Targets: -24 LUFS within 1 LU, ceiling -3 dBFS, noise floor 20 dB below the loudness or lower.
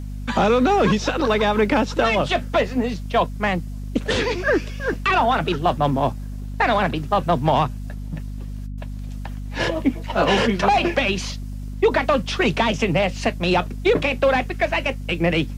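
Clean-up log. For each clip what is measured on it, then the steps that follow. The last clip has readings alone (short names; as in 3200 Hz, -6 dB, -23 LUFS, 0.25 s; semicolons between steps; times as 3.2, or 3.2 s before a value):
hum 50 Hz; harmonics up to 250 Hz; hum level -28 dBFS; loudness -20.5 LUFS; peak -6.5 dBFS; loudness target -24.0 LUFS
-> notches 50/100/150/200/250 Hz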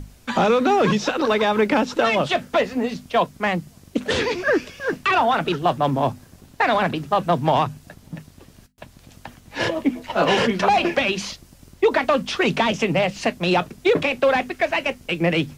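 hum none; loudness -21.0 LUFS; peak -6.0 dBFS; loudness target -24.0 LUFS
-> gain -3 dB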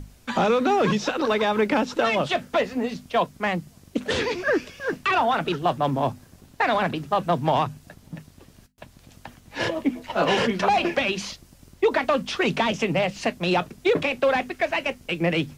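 loudness -24.0 LUFS; peak -9.0 dBFS; noise floor -53 dBFS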